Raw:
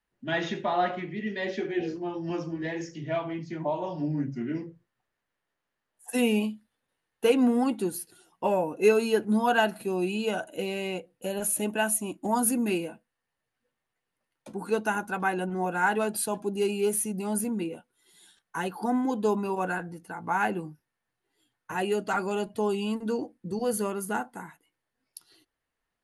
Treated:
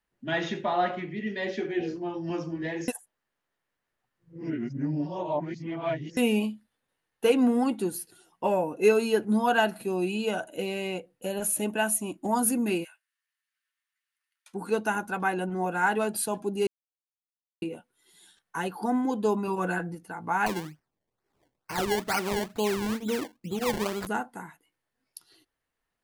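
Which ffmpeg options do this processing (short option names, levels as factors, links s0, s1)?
-filter_complex "[0:a]asplit=3[s0][s1][s2];[s0]afade=t=out:st=12.83:d=0.02[s3];[s1]highpass=f=1400:w=0.5412,highpass=f=1400:w=1.3066,afade=t=in:st=12.83:d=0.02,afade=t=out:st=14.53:d=0.02[s4];[s2]afade=t=in:st=14.53:d=0.02[s5];[s3][s4][s5]amix=inputs=3:normalize=0,asettb=1/sr,asplit=3[s6][s7][s8];[s6]atrim=end=19.474[s9];[s7]atrim=start=19.47:end=19.95,asetpts=PTS-STARTPTS,afade=t=in:d=0.004:c=qsin,afade=t=out:st=0.476:d=0.004:c=qsin,aecho=1:1:6:0.66,atrim=end_sample=21168[s10];[s8]atrim=start=19.946[s11];[s9][s10]acrossfade=d=0.004:c1=hsin:c2=qsin[s12];[s12][s11]acrossfade=d=0.004:c1=qsin:c2=hsin,asettb=1/sr,asplit=3[s13][s14][s15];[s13]atrim=end=20.464[s16];[s14]atrim=start=20.46:end=24.07,asetpts=PTS-STARTPTS,afade=t=in:d=0.004:c=qsin,afade=t=out:st=3.606:d=0.004:c=qsin,acrusher=samples=24:mix=1:aa=0.000001:lfo=1:lforange=24:lforate=2.2[s17];[s15]atrim=start=24.066[s18];[s16][s17]acrossfade=d=0.004:c1=hsin:c2=qsin[s19];[s19][s18]acrossfade=d=0.004:c1=qsin:c2=hsin,asplit=5[s20][s21][s22][s23][s24];[s20]atrim=end=2.882[s25];[s21]atrim=start=2.878:end=6.172,asetpts=PTS-STARTPTS,areverse[s26];[s22]atrim=start=6.168:end=16.67,asetpts=PTS-STARTPTS,afade=t=out:st=10.498:d=0.004:c=hsin[s27];[s23]atrim=start=16.67:end=17.62,asetpts=PTS-STARTPTS,volume=0[s28];[s24]atrim=start=17.62,asetpts=PTS-STARTPTS,afade=t=in:d=0.004:c=hsin[s29];[s25][s26]acrossfade=d=0.004:c1=hsin:c2=hsin[s30];[s27][s28][s29]concat=n=3:v=0:a=1[s31];[s30][s31]acrossfade=d=0.004:c1=hsin:c2=hsin"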